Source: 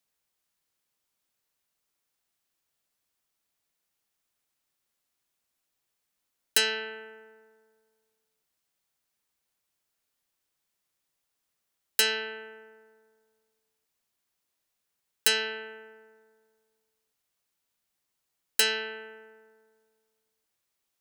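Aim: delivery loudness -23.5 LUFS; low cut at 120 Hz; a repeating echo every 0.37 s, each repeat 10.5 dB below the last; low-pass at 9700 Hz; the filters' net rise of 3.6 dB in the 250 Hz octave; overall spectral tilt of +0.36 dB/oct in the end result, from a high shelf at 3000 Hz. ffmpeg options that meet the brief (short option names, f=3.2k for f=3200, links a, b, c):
-af "highpass=120,lowpass=9.7k,equalizer=f=250:t=o:g=4.5,highshelf=f=3k:g=8.5,aecho=1:1:370|740|1110:0.299|0.0896|0.0269,volume=0.5dB"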